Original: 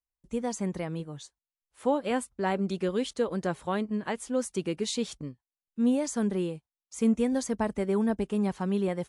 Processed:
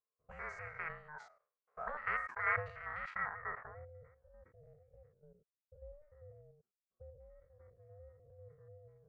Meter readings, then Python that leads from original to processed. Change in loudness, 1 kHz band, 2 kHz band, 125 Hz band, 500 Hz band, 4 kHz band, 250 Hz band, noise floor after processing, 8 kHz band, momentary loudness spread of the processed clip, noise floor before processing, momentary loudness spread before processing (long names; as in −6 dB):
−10.5 dB, −8.0 dB, +0.5 dB, −18.5 dB, −22.0 dB, below −25 dB, below −40 dB, below −85 dBFS, below −35 dB, 24 LU, below −85 dBFS, 10 LU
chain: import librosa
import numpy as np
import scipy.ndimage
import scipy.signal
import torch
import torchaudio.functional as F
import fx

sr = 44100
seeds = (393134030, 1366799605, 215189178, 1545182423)

y = fx.spec_steps(x, sr, hold_ms=100)
y = fx.high_shelf(y, sr, hz=3600.0, db=-8.5)
y = fx.rider(y, sr, range_db=4, speed_s=2.0)
y = fx.auto_wah(y, sr, base_hz=770.0, top_hz=1600.0, q=10.0, full_db=-29.5, direction='up')
y = fx.small_body(y, sr, hz=(720.0, 1900.0, 3500.0), ring_ms=45, db=7)
y = fx.filter_sweep_lowpass(y, sr, from_hz=5300.0, to_hz=160.0, start_s=2.93, end_s=4.03, q=1.2)
y = fx.fixed_phaser(y, sr, hz=1400.0, stages=4)
y = y * np.sin(2.0 * np.pi * 300.0 * np.arange(len(y)) / sr)
y = fx.sustainer(y, sr, db_per_s=120.0)
y = y * 10.0 ** (18.0 / 20.0)